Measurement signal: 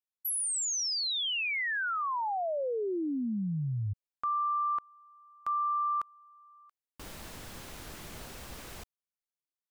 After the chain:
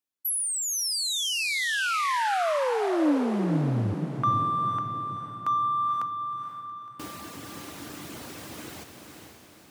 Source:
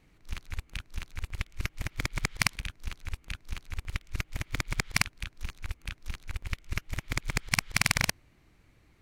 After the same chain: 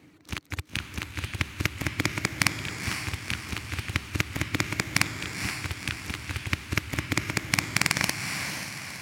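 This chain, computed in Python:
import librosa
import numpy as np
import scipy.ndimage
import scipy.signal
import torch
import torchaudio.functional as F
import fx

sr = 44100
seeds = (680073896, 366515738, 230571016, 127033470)

p1 = fx.dereverb_blind(x, sr, rt60_s=0.81)
p2 = fx.peak_eq(p1, sr, hz=300.0, db=10.0, octaves=0.41)
p3 = np.sign(p2) * np.maximum(np.abs(p2) - 10.0 ** (-34.5 / 20.0), 0.0)
p4 = p2 + F.gain(torch.from_numpy(p3), -11.0).numpy()
p5 = fx.rider(p4, sr, range_db=4, speed_s=0.5)
p6 = scipy.signal.sosfilt(scipy.signal.butter(4, 89.0, 'highpass', fs=sr, output='sos'), p5)
p7 = p6 + fx.echo_diffused(p6, sr, ms=497, feedback_pct=50, wet_db=-6, dry=0)
y = F.gain(torch.from_numpy(p7), 4.0).numpy()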